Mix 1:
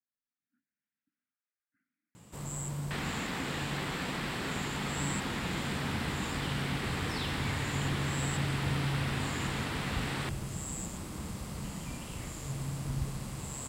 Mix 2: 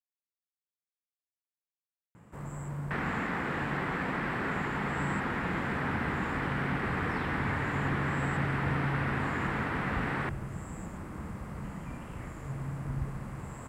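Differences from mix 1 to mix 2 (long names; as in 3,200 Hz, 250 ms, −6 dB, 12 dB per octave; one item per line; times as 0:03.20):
speech: muted
second sound +3.5 dB
master: add high shelf with overshoot 2,600 Hz −13.5 dB, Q 1.5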